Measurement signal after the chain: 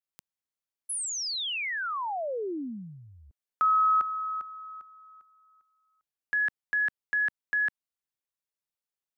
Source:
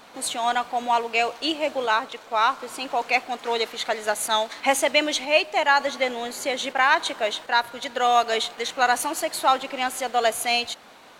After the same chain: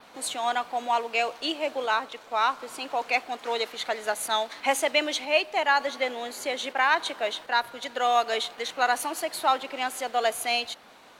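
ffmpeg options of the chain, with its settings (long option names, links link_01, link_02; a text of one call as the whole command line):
ffmpeg -i in.wav -filter_complex "[0:a]acrossover=split=230[link_01][link_02];[link_01]acompressor=threshold=-52dB:ratio=6[link_03];[link_02]adynamicequalizer=threshold=0.00398:dfrequency=7300:dqfactor=2.2:tfrequency=7300:tqfactor=2.2:attack=5:release=100:ratio=0.375:range=2:mode=cutabove:tftype=bell[link_04];[link_03][link_04]amix=inputs=2:normalize=0,volume=-3.5dB" out.wav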